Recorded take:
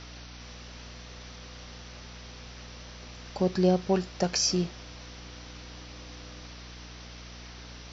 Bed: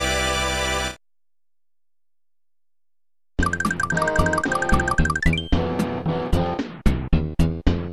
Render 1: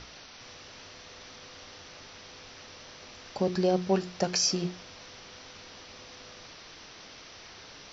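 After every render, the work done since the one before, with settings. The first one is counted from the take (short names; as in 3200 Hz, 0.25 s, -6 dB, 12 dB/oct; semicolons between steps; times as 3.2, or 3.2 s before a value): notches 60/120/180/240/300/360 Hz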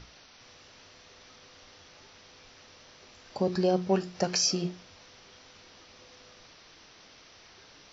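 noise print and reduce 6 dB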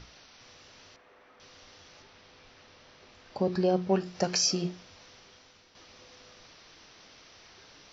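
0.96–1.4 three-band isolator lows -13 dB, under 250 Hz, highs -22 dB, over 2300 Hz; 2.02–4.06 air absorption 110 m; 5.11–5.75 fade out, to -8.5 dB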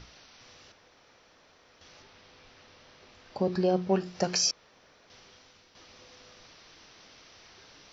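0.72–1.81 room tone; 4.51–5.1 room tone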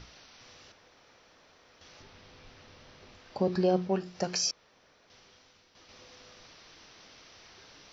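2–3.17 low shelf 230 Hz +8 dB; 3.87–5.89 gain -3.5 dB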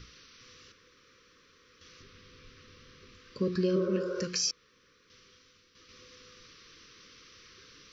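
Chebyshev band-stop 510–1100 Hz, order 3; 3.79–4.2 spectral repair 360–1600 Hz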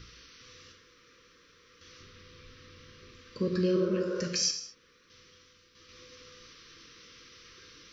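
non-linear reverb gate 0.25 s falling, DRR 3.5 dB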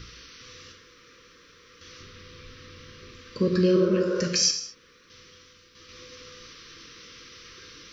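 gain +6.5 dB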